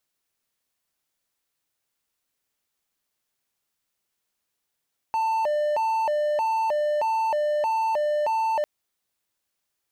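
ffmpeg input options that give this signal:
ffmpeg -f lavfi -i "aevalsrc='0.112*(1-4*abs(mod((744*t+147/1.6*(0.5-abs(mod(1.6*t,1)-0.5)))+0.25,1)-0.5))':duration=3.5:sample_rate=44100" out.wav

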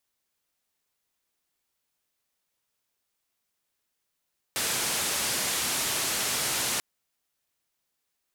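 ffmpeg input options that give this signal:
ffmpeg -f lavfi -i "anoisesrc=color=white:duration=2.24:sample_rate=44100:seed=1,highpass=frequency=81,lowpass=frequency=11000,volume=-20.7dB" out.wav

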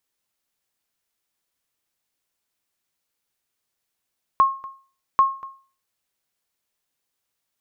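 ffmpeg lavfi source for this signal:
ffmpeg -f lavfi -i "aevalsrc='0.376*(sin(2*PI*1080*mod(t,0.79))*exp(-6.91*mod(t,0.79)/0.39)+0.0944*sin(2*PI*1080*max(mod(t,0.79)-0.24,0))*exp(-6.91*max(mod(t,0.79)-0.24,0)/0.39))':duration=1.58:sample_rate=44100" out.wav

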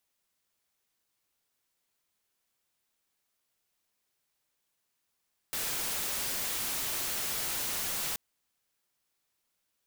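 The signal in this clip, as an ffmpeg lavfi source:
ffmpeg -f lavfi -i "anoisesrc=color=white:amplitude=0.0366:duration=2.63:sample_rate=44100:seed=1" out.wav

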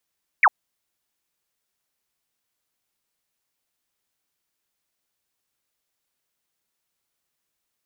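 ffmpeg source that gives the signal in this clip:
ffmpeg -f lavfi -i "aevalsrc='0.299*clip(t/0.002,0,1)*clip((0.05-t)/0.002,0,1)*sin(2*PI*2500*0.05/log(720/2500)*(exp(log(720/2500)*t/0.05)-1))':duration=0.05:sample_rate=44100" out.wav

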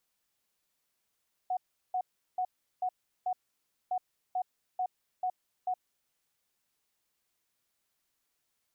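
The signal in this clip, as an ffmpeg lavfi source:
ffmpeg -f lavfi -i "aevalsrc='0.0398*sin(2*PI*736*t)*clip(min(mod(mod(t,2.41),0.44),0.07-mod(mod(t,2.41),0.44))/0.005,0,1)*lt(mod(t,2.41),2.2)':duration=4.82:sample_rate=44100" out.wav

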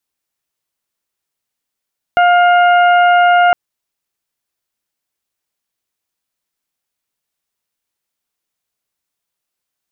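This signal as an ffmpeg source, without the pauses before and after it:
ffmpeg -f lavfi -i "aevalsrc='0.422*sin(2*PI*707*t)+0.224*sin(2*PI*1414*t)+0.0631*sin(2*PI*2121*t)+0.0596*sin(2*PI*2828*t)':duration=1.36:sample_rate=44100" out.wav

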